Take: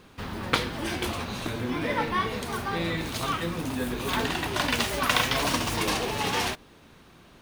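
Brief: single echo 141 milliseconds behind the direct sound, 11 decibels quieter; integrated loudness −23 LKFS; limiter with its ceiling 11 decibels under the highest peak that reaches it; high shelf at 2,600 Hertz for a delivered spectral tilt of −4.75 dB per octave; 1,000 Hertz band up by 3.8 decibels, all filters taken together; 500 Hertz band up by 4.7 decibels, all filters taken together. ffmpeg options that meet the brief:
ffmpeg -i in.wav -af "equalizer=frequency=500:width_type=o:gain=5,equalizer=frequency=1000:width_type=o:gain=4,highshelf=frequency=2600:gain=-5,alimiter=limit=-17dB:level=0:latency=1,aecho=1:1:141:0.282,volume=5dB" out.wav

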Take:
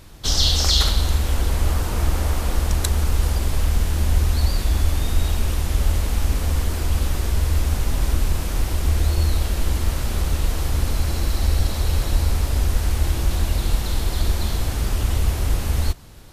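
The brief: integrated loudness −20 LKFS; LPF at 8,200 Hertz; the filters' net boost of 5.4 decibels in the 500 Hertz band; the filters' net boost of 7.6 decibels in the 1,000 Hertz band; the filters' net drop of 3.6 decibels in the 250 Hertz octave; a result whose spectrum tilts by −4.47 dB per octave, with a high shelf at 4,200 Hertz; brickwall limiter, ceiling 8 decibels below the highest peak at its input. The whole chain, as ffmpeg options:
ffmpeg -i in.wav -af "lowpass=8200,equalizer=frequency=250:width_type=o:gain=-8,equalizer=frequency=500:width_type=o:gain=6.5,equalizer=frequency=1000:width_type=o:gain=7.5,highshelf=frequency=4200:gain=8,volume=2.5dB,alimiter=limit=-7dB:level=0:latency=1" out.wav

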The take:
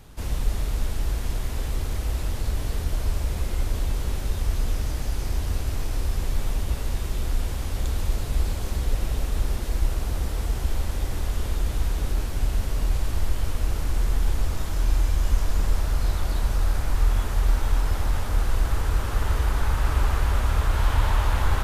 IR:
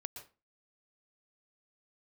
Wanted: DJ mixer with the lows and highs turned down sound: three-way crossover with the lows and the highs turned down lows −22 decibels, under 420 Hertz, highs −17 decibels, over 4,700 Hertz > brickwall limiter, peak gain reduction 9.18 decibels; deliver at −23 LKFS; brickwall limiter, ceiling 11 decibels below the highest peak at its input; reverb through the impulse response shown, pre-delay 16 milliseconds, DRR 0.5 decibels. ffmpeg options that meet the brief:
-filter_complex "[0:a]alimiter=limit=-20dB:level=0:latency=1,asplit=2[link_01][link_02];[1:a]atrim=start_sample=2205,adelay=16[link_03];[link_02][link_03]afir=irnorm=-1:irlink=0,volume=2.5dB[link_04];[link_01][link_04]amix=inputs=2:normalize=0,acrossover=split=420 4700:gain=0.0794 1 0.141[link_05][link_06][link_07];[link_05][link_06][link_07]amix=inputs=3:normalize=0,volume=19dB,alimiter=limit=-13.5dB:level=0:latency=1"

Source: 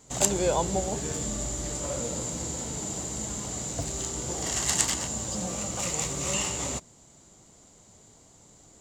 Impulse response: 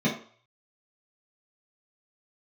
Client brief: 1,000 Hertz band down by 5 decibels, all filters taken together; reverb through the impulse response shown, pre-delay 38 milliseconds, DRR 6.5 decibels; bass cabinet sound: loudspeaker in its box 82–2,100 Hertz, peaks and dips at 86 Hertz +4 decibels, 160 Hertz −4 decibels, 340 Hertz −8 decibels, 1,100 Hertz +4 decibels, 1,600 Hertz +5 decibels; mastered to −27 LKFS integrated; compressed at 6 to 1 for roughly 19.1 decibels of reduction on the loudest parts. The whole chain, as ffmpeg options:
-filter_complex "[0:a]equalizer=frequency=1000:width_type=o:gain=-8.5,acompressor=threshold=-40dB:ratio=6,asplit=2[link_01][link_02];[1:a]atrim=start_sample=2205,adelay=38[link_03];[link_02][link_03]afir=irnorm=-1:irlink=0,volume=-18.5dB[link_04];[link_01][link_04]amix=inputs=2:normalize=0,highpass=frequency=82:width=0.5412,highpass=frequency=82:width=1.3066,equalizer=frequency=86:width_type=q:width=4:gain=4,equalizer=frequency=160:width_type=q:width=4:gain=-4,equalizer=frequency=340:width_type=q:width=4:gain=-8,equalizer=frequency=1100:width_type=q:width=4:gain=4,equalizer=frequency=1600:width_type=q:width=4:gain=5,lowpass=frequency=2100:width=0.5412,lowpass=frequency=2100:width=1.3066,volume=17.5dB"

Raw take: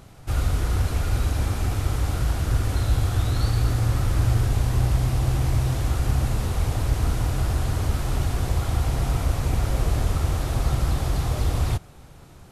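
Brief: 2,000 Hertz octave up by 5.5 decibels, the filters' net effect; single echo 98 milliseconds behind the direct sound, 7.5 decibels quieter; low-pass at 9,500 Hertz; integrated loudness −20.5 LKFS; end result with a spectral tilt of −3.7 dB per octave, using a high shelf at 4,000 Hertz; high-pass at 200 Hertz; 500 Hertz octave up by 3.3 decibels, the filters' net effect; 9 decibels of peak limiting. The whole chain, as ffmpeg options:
ffmpeg -i in.wav -af "highpass=200,lowpass=9500,equalizer=frequency=500:width_type=o:gain=4,equalizer=frequency=2000:width_type=o:gain=5.5,highshelf=frequency=4000:gain=6,alimiter=level_in=1.5dB:limit=-24dB:level=0:latency=1,volume=-1.5dB,aecho=1:1:98:0.422,volume=13dB" out.wav

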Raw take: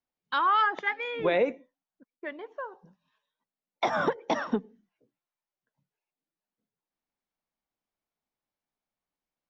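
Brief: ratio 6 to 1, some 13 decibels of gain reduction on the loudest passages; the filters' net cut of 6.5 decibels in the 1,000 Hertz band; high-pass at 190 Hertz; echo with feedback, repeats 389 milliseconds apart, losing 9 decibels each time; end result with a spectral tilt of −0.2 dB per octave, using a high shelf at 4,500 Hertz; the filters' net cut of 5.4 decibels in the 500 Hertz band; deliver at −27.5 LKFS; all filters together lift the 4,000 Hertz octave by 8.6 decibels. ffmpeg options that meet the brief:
ffmpeg -i in.wav -af "highpass=190,equalizer=frequency=500:width_type=o:gain=-4,equalizer=frequency=1000:width_type=o:gain=-9,equalizer=frequency=4000:width_type=o:gain=8.5,highshelf=frequency=4500:gain=6.5,acompressor=threshold=-38dB:ratio=6,aecho=1:1:389|778|1167|1556:0.355|0.124|0.0435|0.0152,volume=15dB" out.wav

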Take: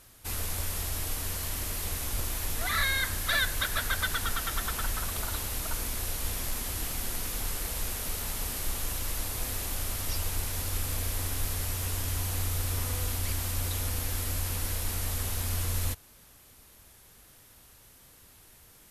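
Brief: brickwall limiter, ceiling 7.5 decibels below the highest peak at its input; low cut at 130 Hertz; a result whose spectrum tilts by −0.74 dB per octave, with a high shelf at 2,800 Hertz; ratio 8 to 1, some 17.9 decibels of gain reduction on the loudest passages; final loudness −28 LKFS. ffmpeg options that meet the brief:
ffmpeg -i in.wav -af "highpass=130,highshelf=frequency=2800:gain=5.5,acompressor=threshold=-41dB:ratio=8,volume=15.5dB,alimiter=limit=-20.5dB:level=0:latency=1" out.wav

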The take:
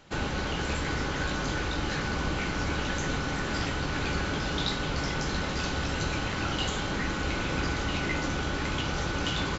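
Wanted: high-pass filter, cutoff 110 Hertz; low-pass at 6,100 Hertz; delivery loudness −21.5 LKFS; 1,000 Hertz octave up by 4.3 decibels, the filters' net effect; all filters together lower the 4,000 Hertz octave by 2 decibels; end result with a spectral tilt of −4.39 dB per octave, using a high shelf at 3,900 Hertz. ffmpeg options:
ffmpeg -i in.wav -af "highpass=110,lowpass=6100,equalizer=frequency=1000:width_type=o:gain=5.5,highshelf=frequency=3900:gain=3.5,equalizer=frequency=4000:width_type=o:gain=-4.5,volume=8dB" out.wav

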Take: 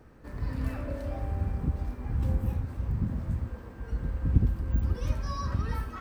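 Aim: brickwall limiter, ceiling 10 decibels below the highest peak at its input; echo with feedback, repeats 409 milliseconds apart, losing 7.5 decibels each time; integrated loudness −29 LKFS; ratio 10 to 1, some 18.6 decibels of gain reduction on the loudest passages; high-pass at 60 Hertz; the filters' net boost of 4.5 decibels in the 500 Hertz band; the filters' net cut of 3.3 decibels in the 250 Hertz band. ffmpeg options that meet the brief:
ffmpeg -i in.wav -af "highpass=60,equalizer=frequency=250:width_type=o:gain=-6,equalizer=frequency=500:width_type=o:gain=6.5,acompressor=threshold=-38dB:ratio=10,alimiter=level_in=15.5dB:limit=-24dB:level=0:latency=1,volume=-15.5dB,aecho=1:1:409|818|1227|1636|2045:0.422|0.177|0.0744|0.0312|0.0131,volume=18.5dB" out.wav

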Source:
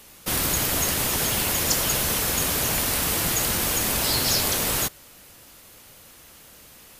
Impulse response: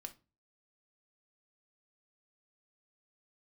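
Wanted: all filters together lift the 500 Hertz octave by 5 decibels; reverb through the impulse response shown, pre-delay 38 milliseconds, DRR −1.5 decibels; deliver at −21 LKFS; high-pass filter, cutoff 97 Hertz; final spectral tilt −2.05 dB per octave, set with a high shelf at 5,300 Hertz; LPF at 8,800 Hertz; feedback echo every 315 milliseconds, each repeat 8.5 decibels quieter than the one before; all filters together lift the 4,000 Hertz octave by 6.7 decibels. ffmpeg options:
-filter_complex "[0:a]highpass=97,lowpass=8800,equalizer=frequency=500:width_type=o:gain=6,equalizer=frequency=4000:width_type=o:gain=6.5,highshelf=frequency=5300:gain=4.5,aecho=1:1:315|630|945|1260:0.376|0.143|0.0543|0.0206,asplit=2[link_01][link_02];[1:a]atrim=start_sample=2205,adelay=38[link_03];[link_02][link_03]afir=irnorm=-1:irlink=0,volume=6dB[link_04];[link_01][link_04]amix=inputs=2:normalize=0,volume=-6dB"

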